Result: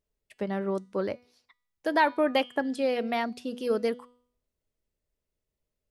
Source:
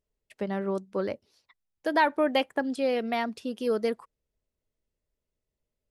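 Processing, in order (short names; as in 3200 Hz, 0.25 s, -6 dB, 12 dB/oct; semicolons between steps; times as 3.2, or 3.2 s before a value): de-hum 245 Hz, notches 39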